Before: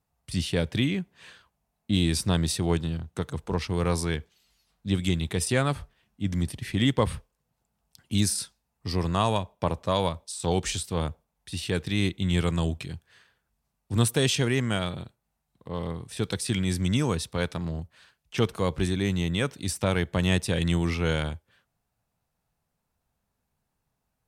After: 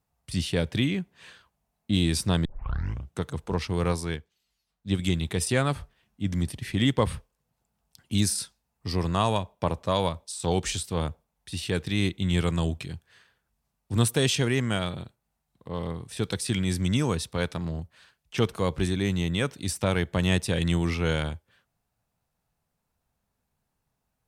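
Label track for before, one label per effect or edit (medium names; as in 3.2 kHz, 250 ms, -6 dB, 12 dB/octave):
2.450000	2.450000	tape start 0.71 s
3.920000	4.990000	upward expansion, over -41 dBFS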